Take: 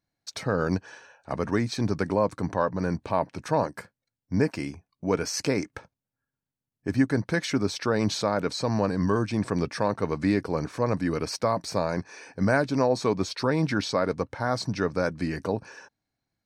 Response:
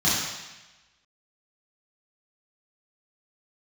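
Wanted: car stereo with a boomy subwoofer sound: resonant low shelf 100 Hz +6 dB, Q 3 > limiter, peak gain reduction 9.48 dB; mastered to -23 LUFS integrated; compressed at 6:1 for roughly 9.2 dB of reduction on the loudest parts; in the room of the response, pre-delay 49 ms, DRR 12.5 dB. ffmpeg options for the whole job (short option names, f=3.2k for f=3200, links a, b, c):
-filter_complex "[0:a]acompressor=threshold=-27dB:ratio=6,asplit=2[a][b];[1:a]atrim=start_sample=2205,adelay=49[c];[b][c]afir=irnorm=-1:irlink=0,volume=-28.5dB[d];[a][d]amix=inputs=2:normalize=0,lowshelf=f=100:t=q:w=3:g=6,volume=13dB,alimiter=limit=-11.5dB:level=0:latency=1"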